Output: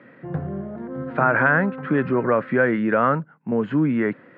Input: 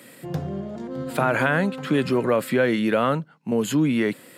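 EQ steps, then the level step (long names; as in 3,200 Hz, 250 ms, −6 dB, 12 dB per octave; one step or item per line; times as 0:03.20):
transistor ladder low-pass 2,000 Hz, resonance 40%
low-shelf EQ 470 Hz +4 dB
dynamic equaliser 1,300 Hz, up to +3 dB, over −33 dBFS, Q 0.73
+5.5 dB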